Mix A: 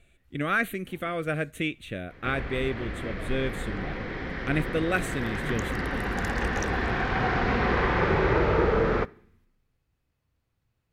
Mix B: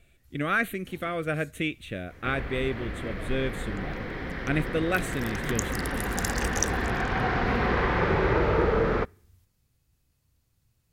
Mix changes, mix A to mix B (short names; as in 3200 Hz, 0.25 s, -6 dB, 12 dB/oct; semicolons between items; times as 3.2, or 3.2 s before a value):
first sound: add tone controls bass +6 dB, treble +15 dB; second sound: send -9.5 dB